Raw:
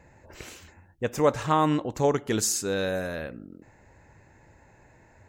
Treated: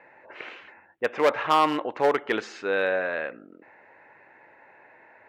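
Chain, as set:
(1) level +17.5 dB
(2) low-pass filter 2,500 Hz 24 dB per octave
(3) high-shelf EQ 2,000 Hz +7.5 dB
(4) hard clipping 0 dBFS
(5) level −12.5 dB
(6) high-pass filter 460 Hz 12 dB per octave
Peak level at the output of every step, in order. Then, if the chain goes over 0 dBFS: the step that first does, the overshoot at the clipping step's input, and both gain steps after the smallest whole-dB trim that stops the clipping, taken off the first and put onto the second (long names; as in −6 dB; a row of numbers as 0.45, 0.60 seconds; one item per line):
+7.5, +7.5, +9.5, 0.0, −12.5, −7.5 dBFS
step 1, 9.5 dB
step 1 +7.5 dB, step 5 −2.5 dB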